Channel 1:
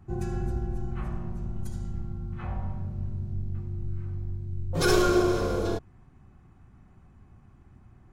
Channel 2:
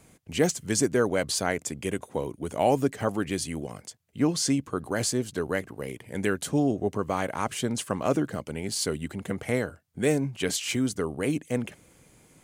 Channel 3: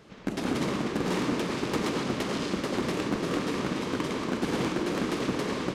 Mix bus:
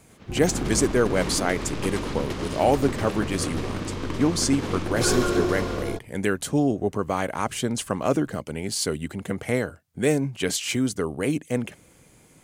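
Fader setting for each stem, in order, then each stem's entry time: −2.0, +2.5, −2.0 decibels; 0.20, 0.00, 0.10 seconds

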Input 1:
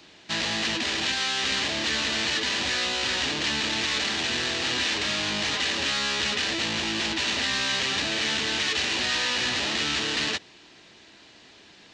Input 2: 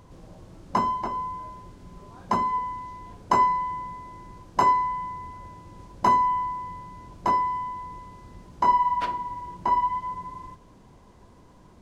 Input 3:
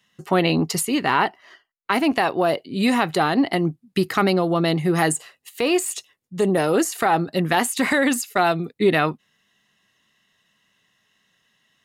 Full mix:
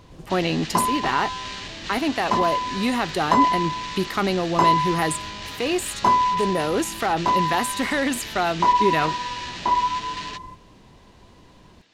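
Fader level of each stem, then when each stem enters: −9.0, +2.0, −4.0 decibels; 0.00, 0.00, 0.00 seconds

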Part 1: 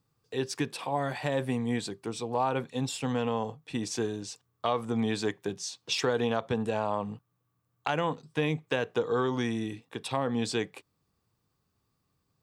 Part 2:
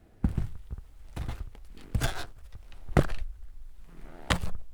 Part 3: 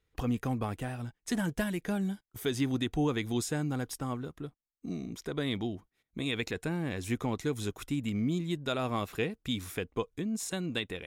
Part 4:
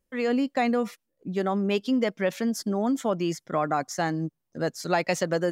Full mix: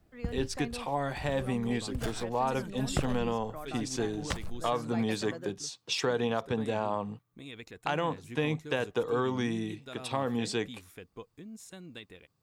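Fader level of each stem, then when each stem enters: −1.5, −8.0, −12.5, −17.5 decibels; 0.00, 0.00, 1.20, 0.00 seconds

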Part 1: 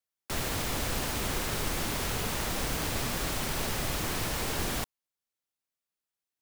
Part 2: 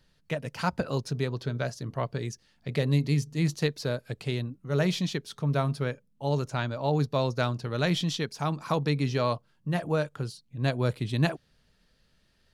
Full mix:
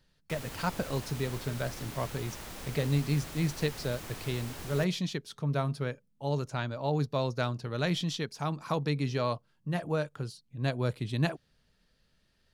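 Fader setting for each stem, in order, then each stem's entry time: −11.5, −3.5 decibels; 0.00, 0.00 seconds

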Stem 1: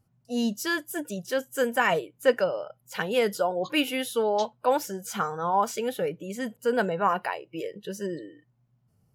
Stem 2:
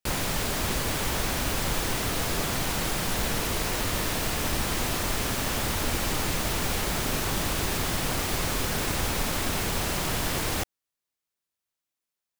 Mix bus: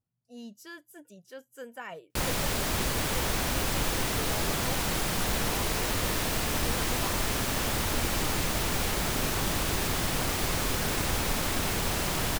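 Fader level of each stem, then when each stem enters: −17.5, −1.0 decibels; 0.00, 2.10 seconds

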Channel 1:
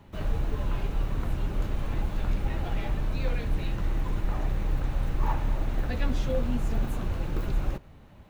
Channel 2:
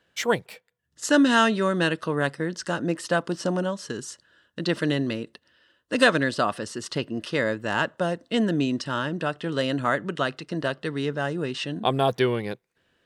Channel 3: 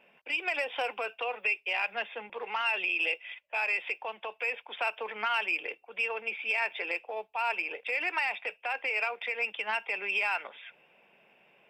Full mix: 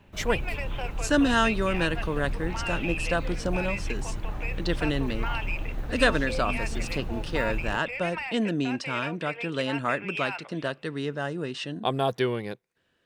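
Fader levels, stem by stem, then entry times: −4.5, −3.5, −4.5 decibels; 0.00, 0.00, 0.00 seconds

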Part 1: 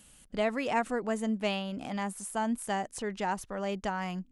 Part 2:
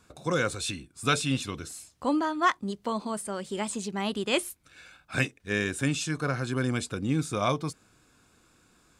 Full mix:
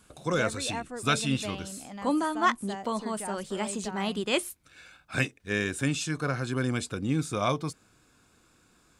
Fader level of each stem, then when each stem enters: −7.0, −0.5 decibels; 0.00, 0.00 seconds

